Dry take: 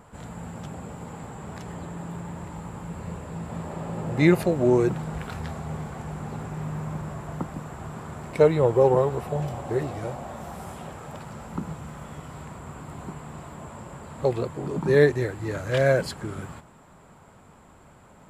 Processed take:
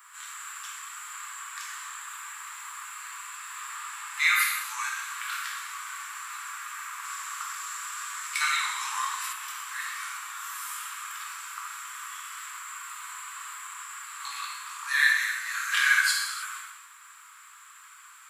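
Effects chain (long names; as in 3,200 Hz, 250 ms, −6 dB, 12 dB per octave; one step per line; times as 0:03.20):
Butterworth high-pass 1,100 Hz 72 dB per octave
high-shelf EQ 9,100 Hz +9.5 dB
reverb whose tail is shaped and stops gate 350 ms falling, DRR −4 dB
0:07.02–0:09.33: dynamic equaliser 5,700 Hz, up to +7 dB, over −52 dBFS, Q 0.79
level +3.5 dB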